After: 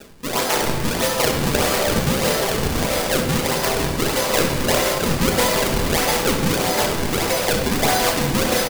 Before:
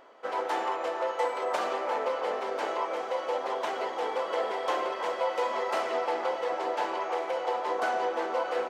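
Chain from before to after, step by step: ten-band graphic EQ 500 Hz +5 dB, 1 kHz -3 dB, 2 kHz +9 dB; decimation with a swept rate 39×, swing 160% 1.6 Hz; reverberation RT60 1.4 s, pre-delay 5 ms, DRR 1 dB; reverse; upward compressor, threshold -32 dBFS; reverse; treble shelf 2.6 kHz +9 dB; delay 1104 ms -13.5 dB; trim +3.5 dB

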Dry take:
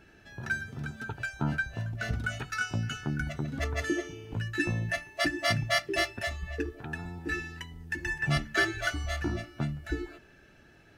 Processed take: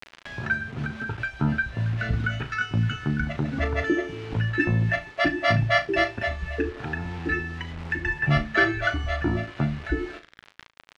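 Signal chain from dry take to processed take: 1.05–3.25 s: peaking EQ 730 Hz -6.5 dB 1.1 oct; bit crusher 8-bit; low-pass 2.7 kHz 12 dB/octave; upward compressor, threshold -49 dBFS; flutter echo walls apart 6.2 m, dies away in 0.21 s; tape noise reduction on one side only encoder only; trim +6.5 dB

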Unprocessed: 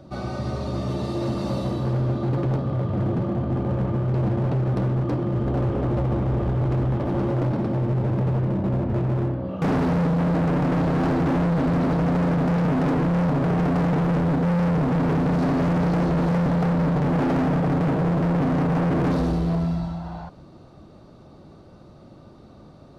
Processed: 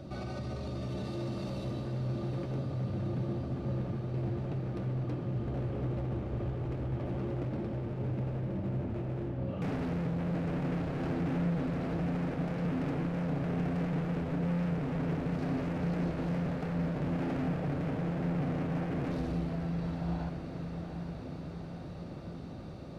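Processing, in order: fifteen-band graphic EQ 100 Hz +3 dB, 1 kHz -5 dB, 2.5 kHz +4 dB; peak limiter -31 dBFS, peak gain reduction 14.5 dB; on a send: echo that smears into a reverb 824 ms, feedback 67%, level -8 dB

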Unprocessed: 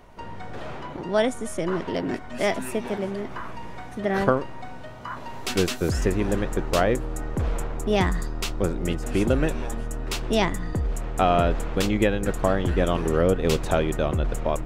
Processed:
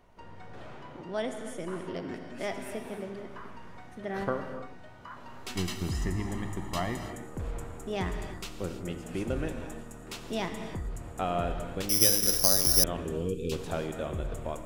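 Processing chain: 5.55–7.07 s: comb 1 ms, depth 79%; 13.02–13.52 s: time-frequency box 510–2300 Hz -25 dB; gated-style reverb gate 350 ms flat, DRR 6 dB; 11.89–12.84 s: careless resampling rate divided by 8×, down none, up zero stuff; trim -11 dB

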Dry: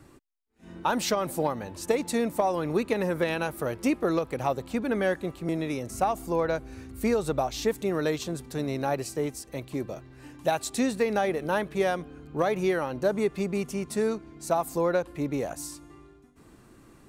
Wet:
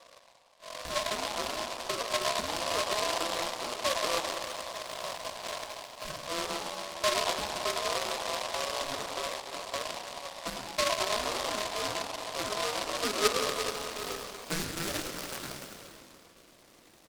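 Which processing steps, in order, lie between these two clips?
rattle on loud lows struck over -34 dBFS, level -18 dBFS; in parallel at +3 dB: compression, threshold -35 dBFS, peak gain reduction 14.5 dB; 4.20–6.05 s: on the sum: frequency inversion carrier 2.7 kHz; band-pass sweep 210 Hz -> 1.4 kHz, 12.74–14.20 s; frequency-shifting echo 107 ms, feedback 53%, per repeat -81 Hz, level -7 dB; on a send at -4 dB: reverberation RT60 2.9 s, pre-delay 6 ms; on the sum: ring modulator 840 Hz; delay time shaken by noise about 3.1 kHz, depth 0.14 ms

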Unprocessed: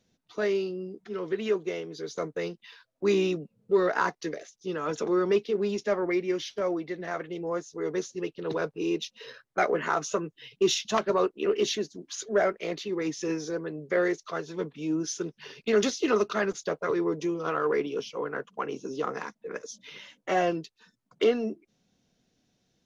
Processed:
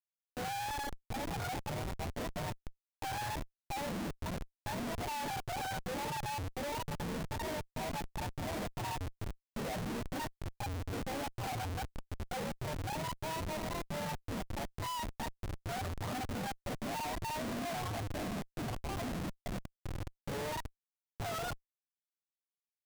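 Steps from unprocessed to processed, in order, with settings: spectrum inverted on a logarithmic axis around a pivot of 560 Hz; peak limiter -20.5 dBFS, peak gain reduction 7 dB; Schmitt trigger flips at -37 dBFS; trim -5 dB

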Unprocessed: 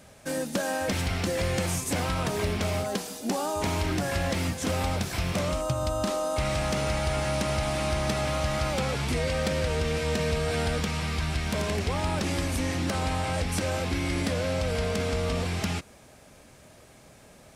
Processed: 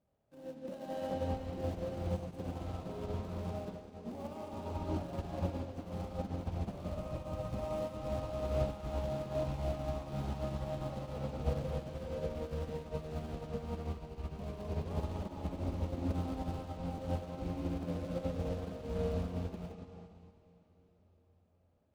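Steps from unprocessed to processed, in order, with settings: median filter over 25 samples; dynamic bell 1.7 kHz, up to -5 dB, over -51 dBFS, Q 1.6; peak limiter -23 dBFS, peak gain reduction 5 dB; tempo 0.8×; reverberation RT60 4.9 s, pre-delay 53 ms, DRR -3 dB; upward expansion 2.5:1, over -35 dBFS; trim -6 dB

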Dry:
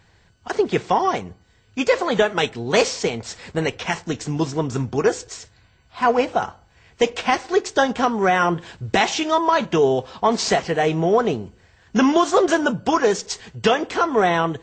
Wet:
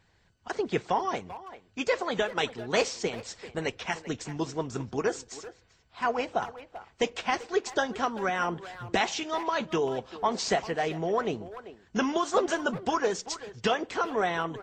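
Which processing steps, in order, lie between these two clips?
speakerphone echo 390 ms, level -13 dB; harmonic-percussive split harmonic -6 dB; trim -7 dB

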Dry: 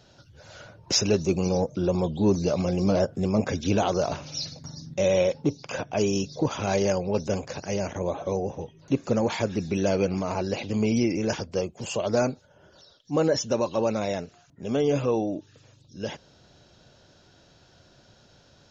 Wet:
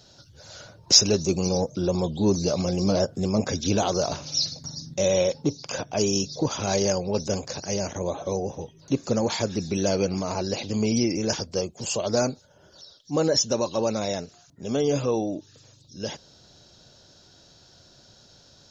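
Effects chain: resonant high shelf 3.4 kHz +6.5 dB, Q 1.5

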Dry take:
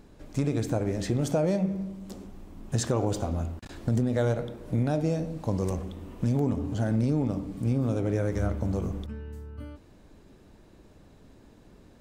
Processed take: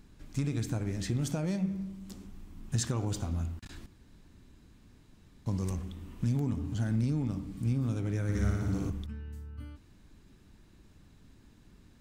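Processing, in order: 3.86–5.46 s: room tone; peaking EQ 560 Hz -13 dB 1.5 oct; 8.23–8.90 s: flutter echo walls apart 10 m, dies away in 1.4 s; trim -1.5 dB

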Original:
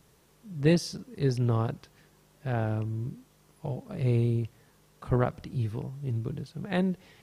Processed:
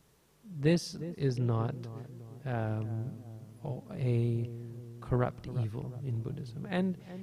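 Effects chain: 1.28–1.72 s: treble shelf 7.6 kHz -5.5 dB; filtered feedback delay 356 ms, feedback 57%, low-pass 830 Hz, level -13 dB; trim -4 dB

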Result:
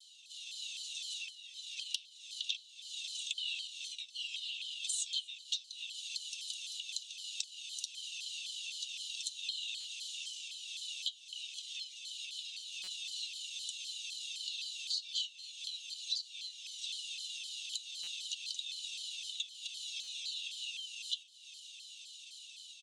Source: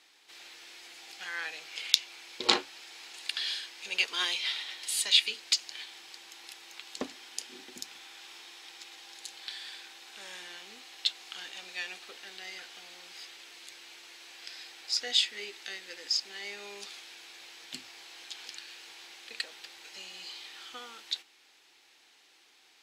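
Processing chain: reverberation RT60 0.40 s, pre-delay 3 ms, DRR 12.5 dB; pitch shift -2.5 st; low-pass 9.1 kHz 24 dB/octave; comb 6.8 ms, depth 43%; compression 6:1, threshold -48 dBFS, peak gain reduction 28.5 dB; rippled Chebyshev high-pass 2.8 kHz, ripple 6 dB; level rider gain up to 7.5 dB; buffer glitch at 9.80/12.83/18.03/20.03 s, samples 256, times 7; vibrato with a chosen wave saw down 3.9 Hz, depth 160 cents; trim +7 dB

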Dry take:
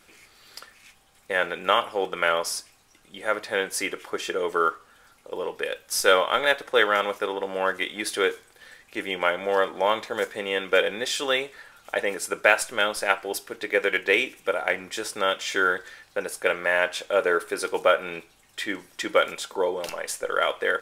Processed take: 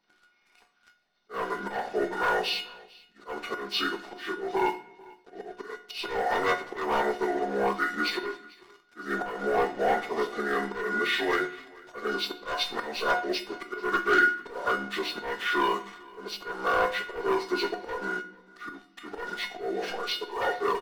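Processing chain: frequency axis rescaled in octaves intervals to 78%; resonant low shelf 140 Hz -6.5 dB, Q 3; waveshaping leveller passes 3; slow attack 206 ms; feedback comb 720 Hz, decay 0.28 s, mix 90%; delay 442 ms -23.5 dB; on a send at -6 dB: reverberation RT60 0.65 s, pre-delay 3 ms; on the sum: trim +6.5 dB

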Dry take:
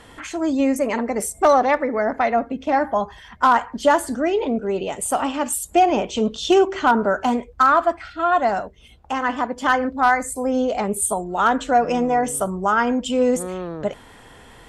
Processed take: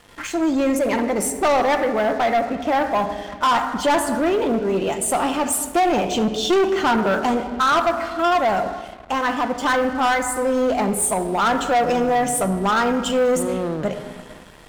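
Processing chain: simulated room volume 2400 m³, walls mixed, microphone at 0.83 m; waveshaping leveller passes 3; trim -8 dB

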